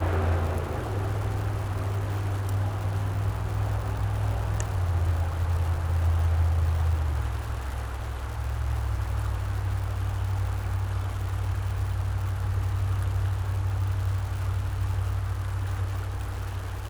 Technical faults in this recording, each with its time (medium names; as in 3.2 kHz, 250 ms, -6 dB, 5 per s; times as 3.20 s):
crackle 200 per s -34 dBFS